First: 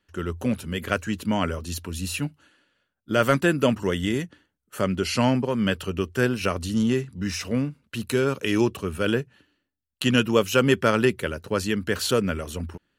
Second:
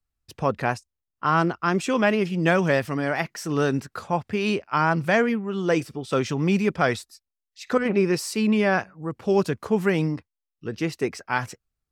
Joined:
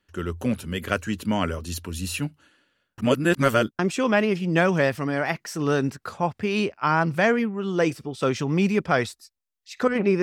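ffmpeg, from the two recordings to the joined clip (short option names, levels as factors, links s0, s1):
-filter_complex "[0:a]apad=whole_dur=10.22,atrim=end=10.22,asplit=2[s0][s1];[s0]atrim=end=2.982[s2];[s1]atrim=start=2.978:end=3.792,asetpts=PTS-STARTPTS,areverse[s3];[1:a]atrim=start=1.688:end=8.12[s4];[s2][s3]acrossfade=d=0.004:c1=hsin:c2=hsin[s5];[s5][s4]acrossfade=d=0.004:c1=hsin:c2=hsin"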